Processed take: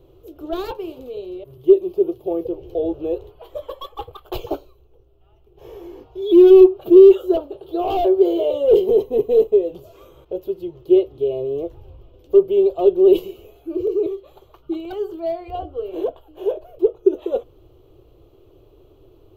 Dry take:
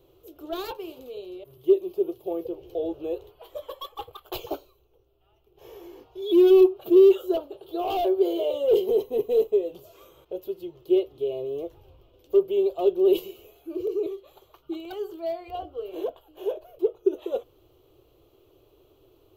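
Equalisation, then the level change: tilt -2 dB/oct; +4.5 dB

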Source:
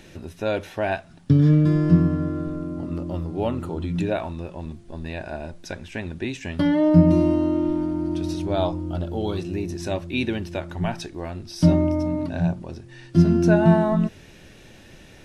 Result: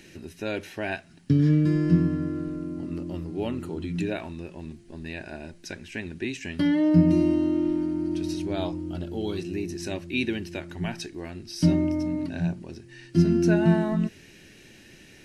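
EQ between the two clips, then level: low shelf 130 Hz -11.5 dB; band shelf 820 Hz -8.5 dB; notch 3500 Hz, Q 11; 0.0 dB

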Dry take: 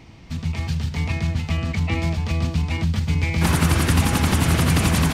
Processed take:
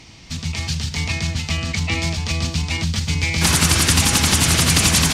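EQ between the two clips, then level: bell 6100 Hz +15 dB 2.5 oct; -1.0 dB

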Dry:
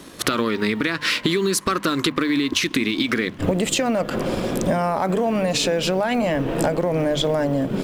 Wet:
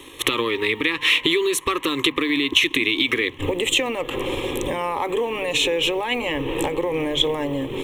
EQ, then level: bell 3500 Hz +9.5 dB 1.2 oct; fixed phaser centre 980 Hz, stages 8; +1.0 dB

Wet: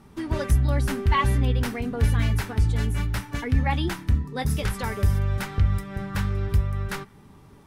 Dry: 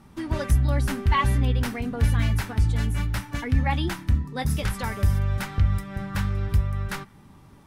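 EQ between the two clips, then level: bell 420 Hz +7.5 dB 0.24 oct; 0.0 dB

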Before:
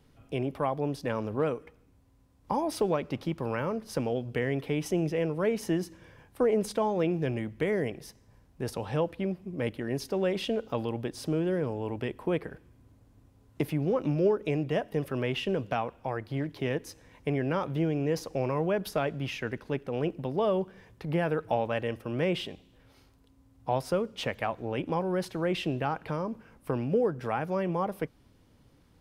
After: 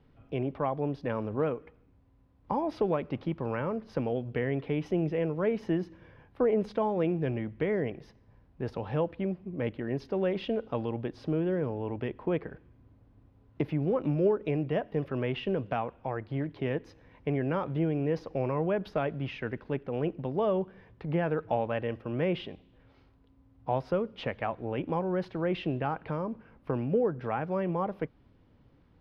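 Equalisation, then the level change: air absorption 290 m; 0.0 dB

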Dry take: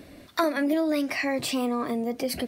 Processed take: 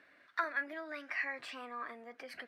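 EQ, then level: band-pass 1600 Hz, Q 3.3; -1.0 dB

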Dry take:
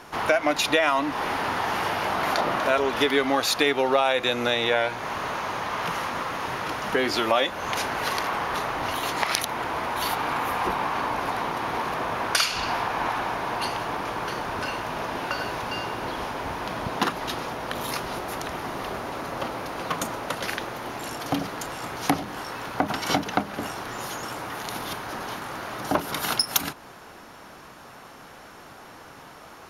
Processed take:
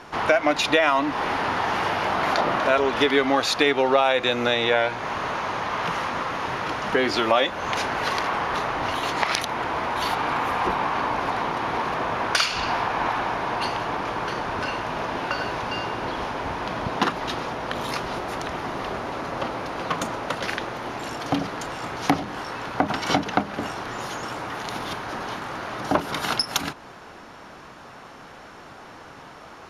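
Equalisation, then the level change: air absorption 59 m; +2.5 dB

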